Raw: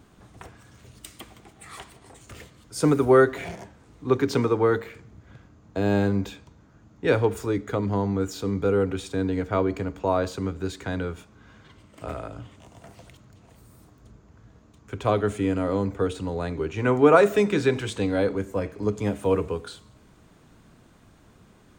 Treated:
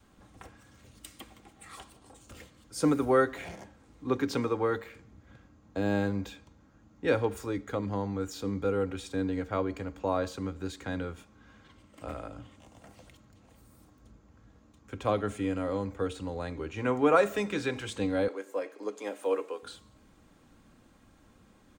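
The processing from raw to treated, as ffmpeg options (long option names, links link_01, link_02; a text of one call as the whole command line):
ffmpeg -i in.wav -filter_complex "[0:a]asettb=1/sr,asplit=3[link_01][link_02][link_03];[link_01]atrim=end=1.754[link_04];[link_02]atrim=start=1.75:end=2.37,asetpts=PTS-STARTPTS,afade=type=in:duration=0.004:curve=qsin,afade=type=out:start_time=0.616:duration=0.004:curve=qsin,equalizer=frequency=2000:width_type=o:width=0.48:gain=-8.5[link_05];[link_03]atrim=start=2.366[link_06];[link_04][link_05]acrossfade=duration=0.004:curve1=hsin:curve2=qsin[link_07];[link_07][link_06]acrossfade=duration=0.004:curve1=qsin:curve2=hsin,asettb=1/sr,asplit=3[link_08][link_09][link_10];[link_08]atrim=end=18.284[link_11];[link_09]atrim=start=18.28:end=19.63,asetpts=PTS-STARTPTS,afade=type=in:duration=0.004:curve=qsin,afade=type=out:start_time=1.346:duration=0.004:curve=qsin,highpass=frequency=350:width=0.5412,highpass=frequency=350:width=1.3066[link_12];[link_10]atrim=start=19.626[link_13];[link_11][link_12]acrossfade=duration=0.004:curve1=hsin:curve2=qsin[link_14];[link_14][link_13]acrossfade=duration=0.004:curve1=qsin:curve2=hsin,adynamicequalizer=threshold=0.02:dfrequency=240:dqfactor=0.87:tfrequency=240:tqfactor=0.87:attack=5:release=100:ratio=0.375:range=3:mode=cutabove:tftype=bell,aecho=1:1:3.7:0.37,volume=-5.5dB" out.wav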